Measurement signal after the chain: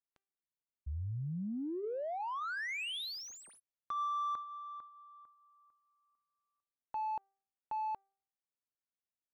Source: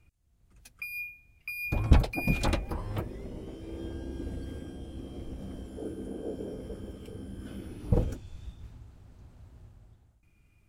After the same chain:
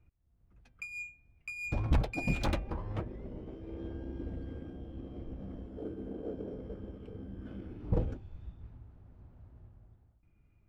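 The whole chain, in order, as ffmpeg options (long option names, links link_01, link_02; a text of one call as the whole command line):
ffmpeg -i in.wav -af "bandreject=frequency=392:width_type=h:width=4,bandreject=frequency=784:width_type=h:width=4,bandreject=frequency=1176:width_type=h:width=4,bandreject=frequency=1568:width_type=h:width=4,bandreject=frequency=1960:width_type=h:width=4,bandreject=frequency=2352:width_type=h:width=4,bandreject=frequency=2744:width_type=h:width=4,bandreject=frequency=3136:width_type=h:width=4,bandreject=frequency=3528:width_type=h:width=4,adynamicsmooth=sensitivity=7.5:basefreq=1900,asoftclip=type=tanh:threshold=-16.5dB,volume=-2.5dB" out.wav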